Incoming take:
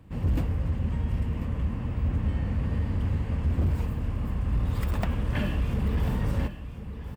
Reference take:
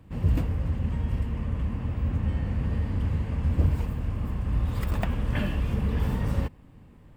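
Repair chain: clip repair -20 dBFS; inverse comb 1.042 s -12 dB

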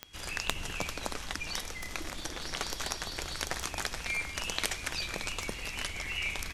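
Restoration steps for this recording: clip repair -6.5 dBFS; de-click; notch 3300 Hz, Q 30

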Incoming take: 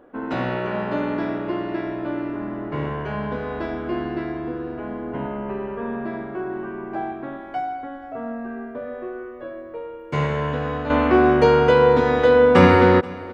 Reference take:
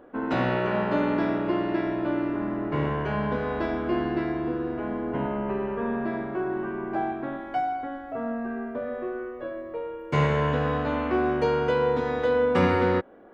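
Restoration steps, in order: inverse comb 0.48 s -21 dB; gain correction -9 dB, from 10.9

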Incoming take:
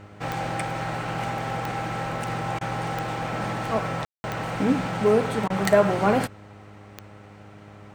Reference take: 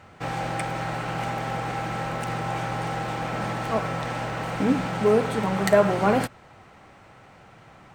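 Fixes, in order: de-click; de-hum 102.6 Hz, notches 6; room tone fill 4.05–4.24; interpolate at 2.59/5.48, 19 ms

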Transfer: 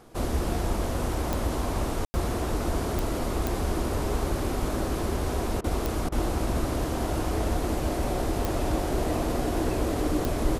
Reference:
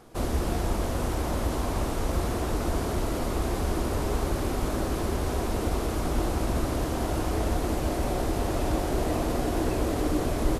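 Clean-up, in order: de-click; room tone fill 2.05–2.14; interpolate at 5.61/6.09, 30 ms

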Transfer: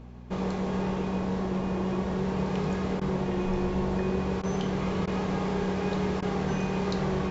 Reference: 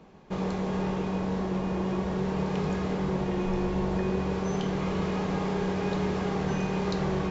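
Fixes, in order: de-hum 60.4 Hz, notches 4; interpolate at 3/4.42/5.06/6.21, 12 ms

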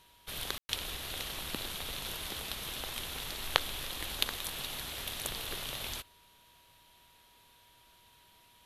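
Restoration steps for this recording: notch 960 Hz, Q 30; room tone fill 0.58–0.69

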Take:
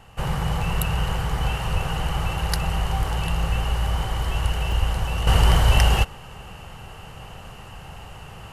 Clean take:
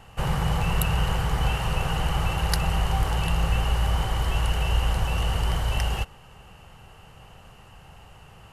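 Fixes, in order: de-plosive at 1.72/4.42/4.79/5.66; interpolate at 4.72, 2.6 ms; gain 0 dB, from 5.27 s -8.5 dB

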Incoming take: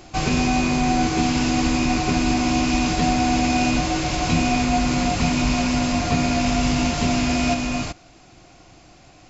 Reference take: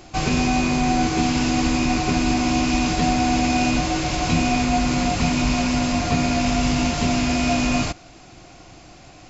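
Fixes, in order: gain correction +4 dB, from 7.54

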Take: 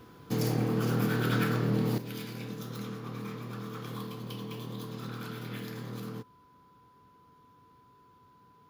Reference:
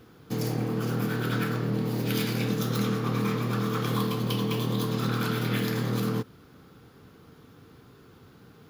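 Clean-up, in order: notch 1000 Hz, Q 30; gain correction +12 dB, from 1.98

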